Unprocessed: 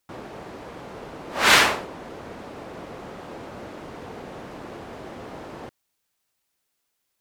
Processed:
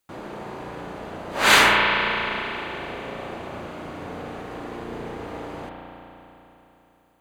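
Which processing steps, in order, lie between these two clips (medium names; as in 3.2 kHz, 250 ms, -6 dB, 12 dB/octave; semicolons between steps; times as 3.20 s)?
band-stop 5.4 kHz, Q 8.5; spring tank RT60 3.5 s, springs 34 ms, chirp 65 ms, DRR -1 dB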